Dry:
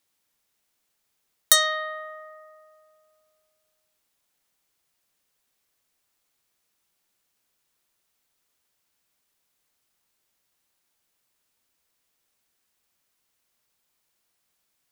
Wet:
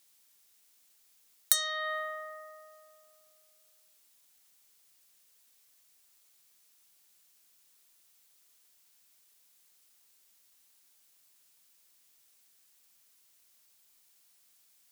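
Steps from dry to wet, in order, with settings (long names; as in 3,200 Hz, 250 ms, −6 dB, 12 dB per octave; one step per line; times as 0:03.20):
high-pass filter 110 Hz 24 dB per octave
high-shelf EQ 2,700 Hz +11.5 dB
downward compressor 4 to 1, threshold −25 dBFS, peak gain reduction 19.5 dB
level −1 dB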